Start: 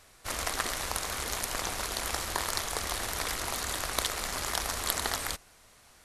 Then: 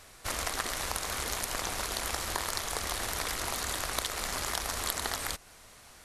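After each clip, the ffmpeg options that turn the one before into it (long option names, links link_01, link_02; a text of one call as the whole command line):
ffmpeg -i in.wav -af "acompressor=threshold=-38dB:ratio=2,volume=4.5dB" out.wav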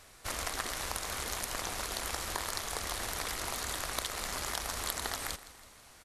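ffmpeg -i in.wav -af "aecho=1:1:164|328|492|656|820:0.15|0.0778|0.0405|0.021|0.0109,volume=-3dB" out.wav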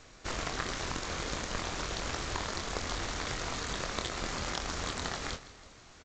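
ffmpeg -i in.wav -filter_complex "[0:a]asplit=2[link_01][link_02];[link_02]acrusher=samples=41:mix=1:aa=0.000001,volume=-6.5dB[link_03];[link_01][link_03]amix=inputs=2:normalize=0,asplit=2[link_04][link_05];[link_05]adelay=24,volume=-7.5dB[link_06];[link_04][link_06]amix=inputs=2:normalize=0" -ar 16000 -c:a g722 out.g722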